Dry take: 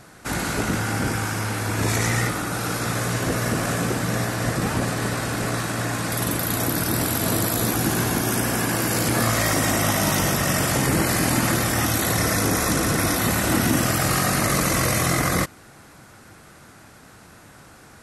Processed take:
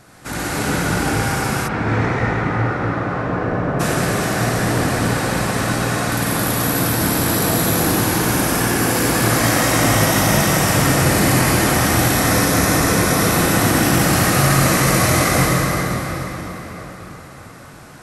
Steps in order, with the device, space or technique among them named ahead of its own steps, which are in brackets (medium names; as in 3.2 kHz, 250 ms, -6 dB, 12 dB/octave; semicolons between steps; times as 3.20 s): cathedral (reverberation RT60 4.8 s, pre-delay 59 ms, DRR -6 dB); 1.67–3.79 s: low-pass 2.4 kHz -> 1.2 kHz 12 dB/octave; trim -1 dB